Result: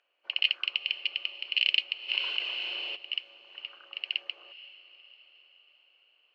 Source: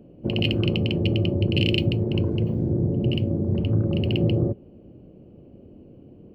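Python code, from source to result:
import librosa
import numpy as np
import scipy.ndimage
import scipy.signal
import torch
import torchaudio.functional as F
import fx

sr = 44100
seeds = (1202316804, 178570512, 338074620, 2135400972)

y = scipy.signal.sosfilt(scipy.signal.butter(4, 1400.0, 'highpass', fs=sr, output='sos'), x)
y = fx.air_absorb(y, sr, metres=150.0)
y = fx.echo_diffused(y, sr, ms=484, feedback_pct=54, wet_db=-15.0)
y = fx.env_flatten(y, sr, amount_pct=50, at=(2.08, 2.95), fade=0.02)
y = y * 10.0 ** (4.5 / 20.0)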